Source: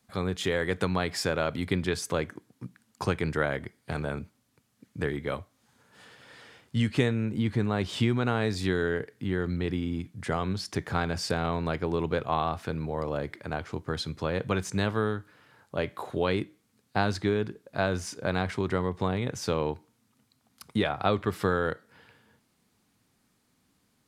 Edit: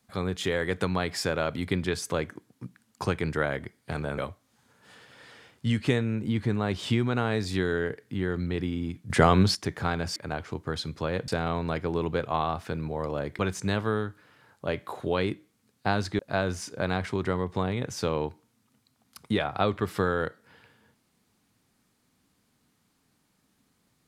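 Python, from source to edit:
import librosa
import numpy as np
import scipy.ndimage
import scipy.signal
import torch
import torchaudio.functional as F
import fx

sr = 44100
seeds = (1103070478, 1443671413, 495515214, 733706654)

y = fx.edit(x, sr, fx.cut(start_s=4.18, length_s=1.1),
    fx.clip_gain(start_s=10.2, length_s=0.45, db=10.0),
    fx.move(start_s=13.37, length_s=1.12, to_s=11.26),
    fx.cut(start_s=17.29, length_s=0.35), tone=tone)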